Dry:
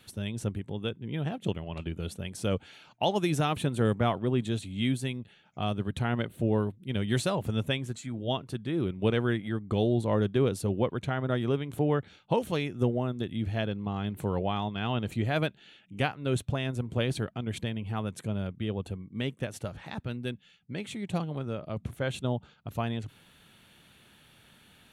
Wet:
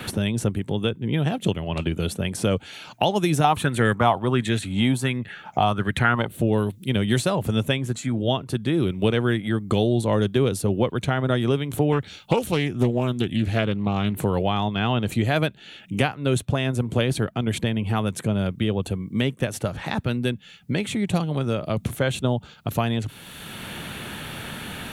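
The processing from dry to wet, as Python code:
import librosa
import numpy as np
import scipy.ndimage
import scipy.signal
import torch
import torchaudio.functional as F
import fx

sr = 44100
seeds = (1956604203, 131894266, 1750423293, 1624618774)

y = fx.bell_lfo(x, sr, hz=1.4, low_hz=800.0, high_hz=2000.0, db=15, at=(3.44, 6.27))
y = fx.doppler_dist(y, sr, depth_ms=0.36, at=(11.92, 14.25))
y = fx.high_shelf(y, sr, hz=6700.0, db=6.5)
y = fx.band_squash(y, sr, depth_pct=70)
y = y * librosa.db_to_amplitude(6.5)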